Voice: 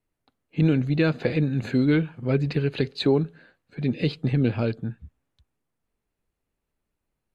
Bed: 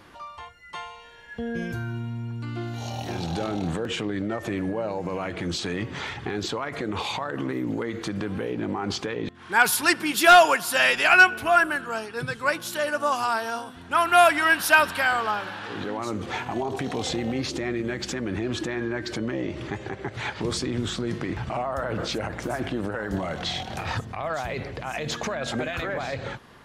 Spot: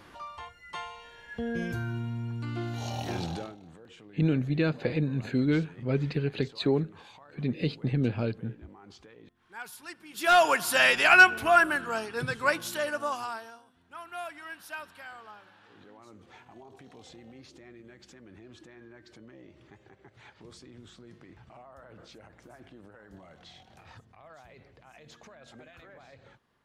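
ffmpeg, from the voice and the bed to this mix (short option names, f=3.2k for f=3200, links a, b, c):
-filter_complex "[0:a]adelay=3600,volume=-5dB[a];[1:a]volume=19.5dB,afade=t=out:st=3.17:d=0.39:silence=0.0891251,afade=t=in:st=10.1:d=0.52:silence=0.0841395,afade=t=out:st=12.49:d=1.09:silence=0.0891251[b];[a][b]amix=inputs=2:normalize=0"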